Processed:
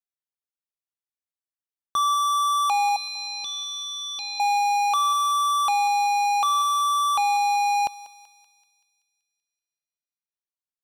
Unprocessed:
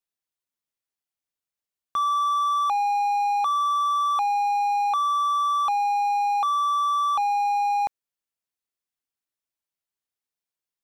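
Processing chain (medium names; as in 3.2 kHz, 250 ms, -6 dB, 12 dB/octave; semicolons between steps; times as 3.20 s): waveshaping leveller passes 5; 2.96–4.40 s: FFT filter 270 Hz 0 dB, 1.1 kHz -27 dB, 4.8 kHz +9 dB, 7.4 kHz -15 dB, 12 kHz -19 dB; thinning echo 191 ms, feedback 59%, high-pass 1.1 kHz, level -14.5 dB; trim -2 dB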